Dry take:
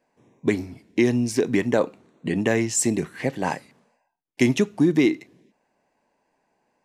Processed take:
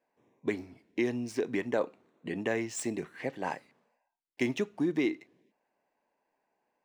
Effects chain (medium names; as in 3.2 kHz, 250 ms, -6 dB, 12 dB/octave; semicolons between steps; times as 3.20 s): median filter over 3 samples; tone controls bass -8 dB, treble -6 dB; trim -8 dB